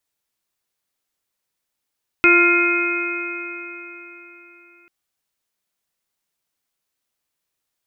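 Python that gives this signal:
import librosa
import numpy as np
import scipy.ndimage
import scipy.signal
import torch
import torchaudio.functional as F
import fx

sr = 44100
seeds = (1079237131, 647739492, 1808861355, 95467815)

y = fx.additive_stiff(sr, length_s=2.64, hz=345.0, level_db=-15, upper_db=(-16, -14.5, 0, -19, -1.5, 3.0), decay_s=3.81, stiffness=0.0016)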